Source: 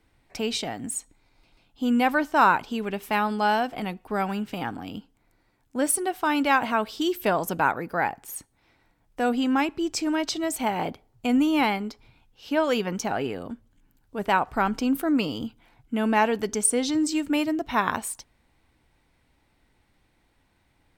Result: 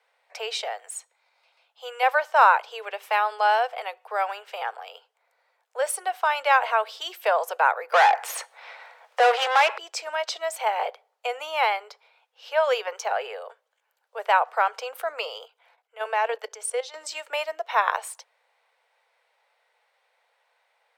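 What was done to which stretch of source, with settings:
0.79–2.03 HPF 580 Hz 6 dB/oct
7.92–9.78 overdrive pedal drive 28 dB, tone 3500 Hz, clips at -12 dBFS
15.45–16.94 level quantiser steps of 12 dB
whole clip: steep high-pass 470 Hz 72 dB/oct; high shelf 5800 Hz -11 dB; gain +3 dB

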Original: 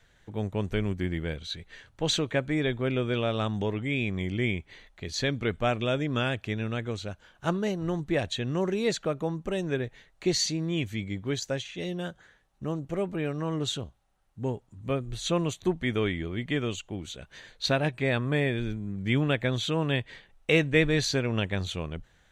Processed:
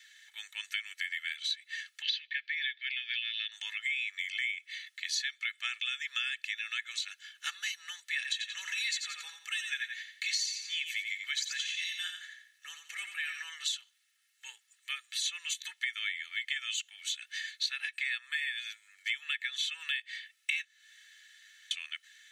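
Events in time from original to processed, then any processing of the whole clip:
2.02–3.52 elliptic band-pass 1700–4900 Hz
8.16–13.44 feedback echo 87 ms, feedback 34%, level -7.5 dB
20.65–21.71 room tone
whole clip: Chebyshev high-pass 1800 Hz, order 4; comb 2.3 ms, depth 80%; compressor 6:1, threshold -40 dBFS; gain +8.5 dB

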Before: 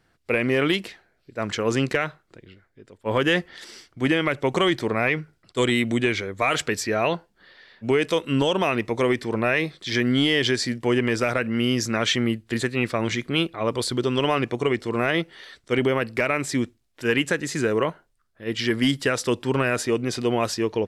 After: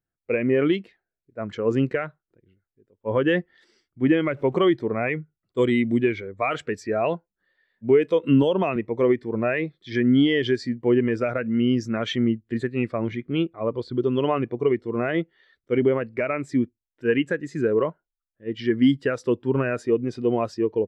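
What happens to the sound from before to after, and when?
4.07–4.58 zero-crossing step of -37.5 dBFS
8.23–8.76 three-band squash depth 70%
13.02–13.95 air absorption 97 m
whole clip: high shelf 3100 Hz -6 dB; spectral expander 1.5:1

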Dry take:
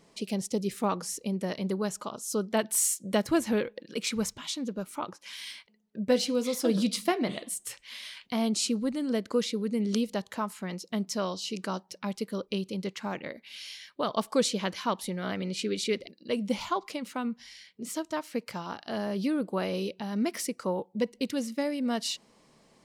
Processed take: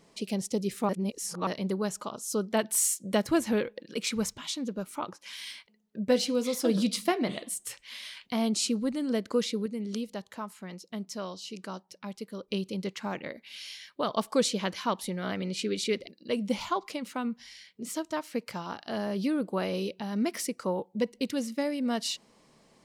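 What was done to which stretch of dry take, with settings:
0.89–1.47 reverse
9.66–12.48 gain -6 dB

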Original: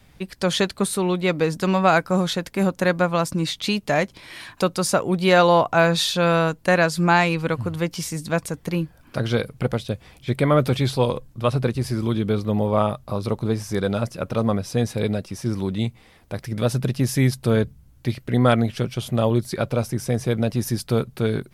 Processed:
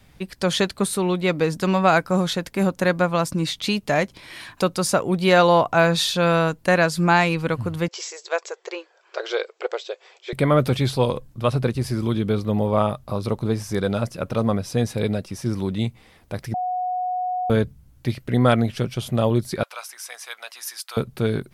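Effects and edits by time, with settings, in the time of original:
7.88–10.33 brick-wall FIR band-pass 350–7900 Hz
16.54–17.5 bleep 731 Hz -22 dBFS
19.63–20.97 HPF 970 Hz 24 dB/oct

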